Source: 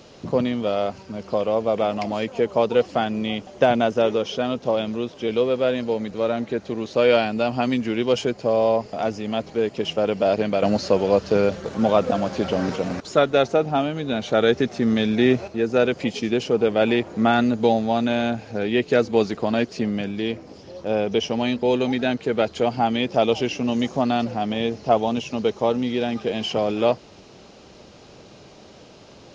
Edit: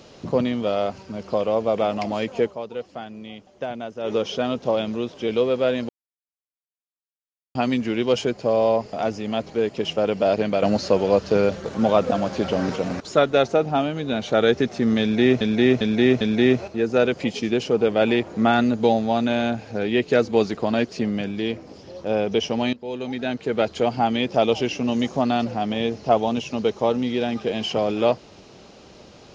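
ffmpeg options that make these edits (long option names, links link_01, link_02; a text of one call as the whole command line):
ffmpeg -i in.wav -filter_complex "[0:a]asplit=9[link_01][link_02][link_03][link_04][link_05][link_06][link_07][link_08][link_09];[link_01]atrim=end=2.58,asetpts=PTS-STARTPTS,afade=type=out:start_time=2.45:duration=0.13:curve=qua:silence=0.237137[link_10];[link_02]atrim=start=2.58:end=3.99,asetpts=PTS-STARTPTS,volume=-12.5dB[link_11];[link_03]atrim=start=3.99:end=5.89,asetpts=PTS-STARTPTS,afade=type=in:duration=0.13:curve=qua:silence=0.237137,afade=type=out:start_time=1.896:duration=0.004:curve=hsin[link_12];[link_04]atrim=start=5.89:end=7.55,asetpts=PTS-STARTPTS,volume=0[link_13];[link_05]atrim=start=7.55:end=15.412,asetpts=PTS-STARTPTS,afade=type=in:duration=0.004:curve=hsin[link_14];[link_06]atrim=start=15.008:end=15.412[link_15];[link_07]atrim=start=15.008:end=15.412[link_16];[link_08]atrim=start=15.008:end=21.53,asetpts=PTS-STARTPTS,afade=type=out:start_time=6.518:duration=0.004:curve=hsin:silence=0.125893[link_17];[link_09]atrim=start=21.53,asetpts=PTS-STARTPTS,afade=type=in:duration=0.92:silence=0.125893[link_18];[link_10][link_11][link_12][link_13][link_14]concat=n=5:v=0:a=1[link_19];[link_19][link_15]acrossfade=duration=0.004:curve1=hsin:curve2=hsin[link_20];[link_20][link_16]acrossfade=duration=0.004:curve1=hsin:curve2=hsin[link_21];[link_17][link_18]concat=n=2:v=0:a=1[link_22];[link_21][link_22]acrossfade=duration=0.004:curve1=hsin:curve2=hsin" out.wav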